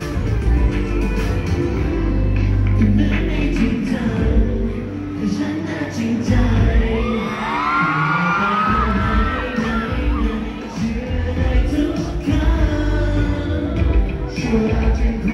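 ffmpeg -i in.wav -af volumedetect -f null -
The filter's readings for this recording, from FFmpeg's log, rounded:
mean_volume: -17.5 dB
max_volume: -4.1 dB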